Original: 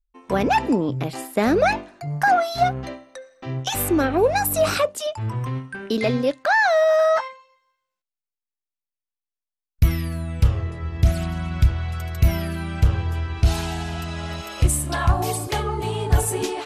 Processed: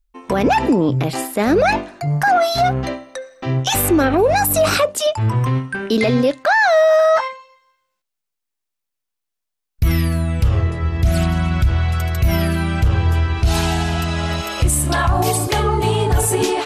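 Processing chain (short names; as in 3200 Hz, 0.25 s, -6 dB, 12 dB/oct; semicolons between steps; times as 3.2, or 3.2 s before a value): limiter -16.5 dBFS, peak gain reduction 10.5 dB; gain +9 dB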